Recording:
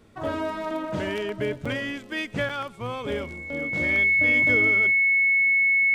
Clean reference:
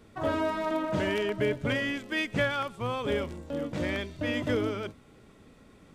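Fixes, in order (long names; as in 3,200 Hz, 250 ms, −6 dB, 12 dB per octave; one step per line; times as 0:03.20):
notch filter 2,200 Hz, Q 30
repair the gap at 0:01.65/0:02.49, 5 ms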